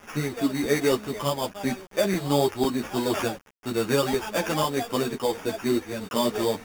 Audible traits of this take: aliases and images of a low sample rate 4100 Hz, jitter 0%; tremolo triangle 1.3 Hz, depth 35%; a quantiser's noise floor 8-bit, dither none; a shimmering, thickened sound

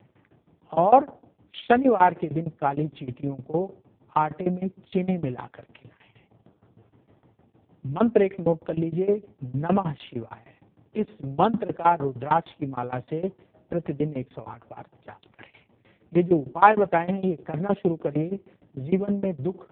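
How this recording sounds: tremolo saw down 6.5 Hz, depth 95%; AMR-NB

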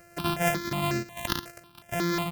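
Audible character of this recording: a buzz of ramps at a fixed pitch in blocks of 128 samples; tremolo triangle 0.94 Hz, depth 35%; notches that jump at a steady rate 5.5 Hz 960–3300 Hz

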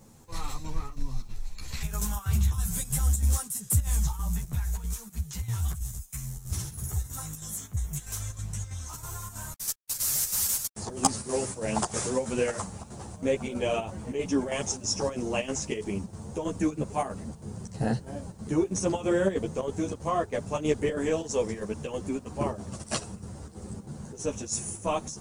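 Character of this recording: chopped level 3.1 Hz, depth 60%, duty 75%; a quantiser's noise floor 12-bit, dither none; a shimmering, thickened sound

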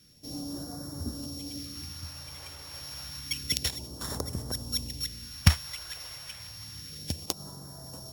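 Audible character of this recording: a buzz of ramps at a fixed pitch in blocks of 8 samples; phasing stages 2, 0.29 Hz, lowest notch 230–2500 Hz; Opus

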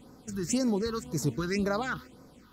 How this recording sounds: phasing stages 6, 1.9 Hz, lowest notch 600–3000 Hz

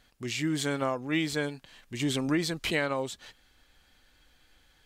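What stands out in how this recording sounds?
noise floor -65 dBFS; spectral tilt -4.5 dB/oct

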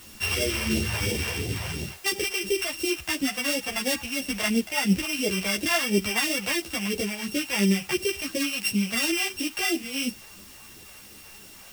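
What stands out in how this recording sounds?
a buzz of ramps at a fixed pitch in blocks of 16 samples; phasing stages 2, 2.9 Hz, lowest notch 290–1100 Hz; a quantiser's noise floor 8-bit, dither triangular; a shimmering, thickened sound

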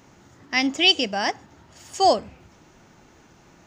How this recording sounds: noise floor -54 dBFS; spectral tilt -2.0 dB/oct

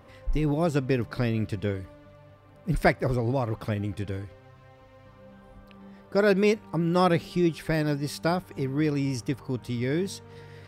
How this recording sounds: noise floor -53 dBFS; spectral tilt -6.0 dB/oct

